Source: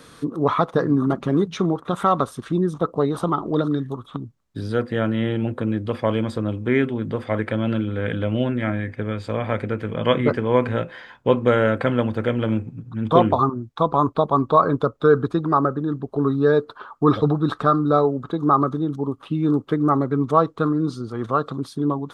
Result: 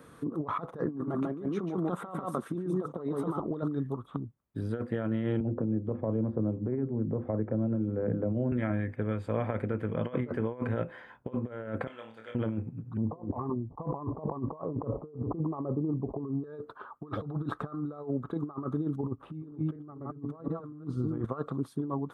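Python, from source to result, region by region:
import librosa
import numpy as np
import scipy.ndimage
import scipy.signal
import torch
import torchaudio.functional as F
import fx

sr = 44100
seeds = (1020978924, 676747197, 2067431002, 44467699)

y = fx.chain(x, sr, fx.highpass(hz=150.0, slope=12),
    fx.echo_single(ms=144, db=-4.0), at=(0.85, 3.4))
y = fx.chain(y, sr, fx.bessel_lowpass(hz=520.0, order=2),
    fx.hum_notches(base_hz=50, count=7),
    fx.band_squash(depth_pct=100), at=(5.4, 8.52))
y = fx.chain(y, sr, fx.bandpass_q(hz=4800.0, q=1.1),
    fx.room_flutter(wall_m=4.6, rt60_s=0.34), at=(11.87, 12.35))
y = fx.chain(y, sr, fx.steep_lowpass(hz=1100.0, slope=72),
    fx.sustainer(db_per_s=110.0), at=(12.97, 16.44))
y = fx.chain(y, sr, fx.reverse_delay(ms=242, wet_db=-5.5),
    fx.tilt_eq(slope=-2.0), at=(19.03, 21.25))
y = fx.over_compress(y, sr, threshold_db=-23.0, ratio=-0.5)
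y = scipy.signal.sosfilt(scipy.signal.butter(2, 43.0, 'highpass', fs=sr, output='sos'), y)
y = fx.peak_eq(y, sr, hz=4700.0, db=-14.5, octaves=1.8)
y = y * 10.0 ** (-8.5 / 20.0)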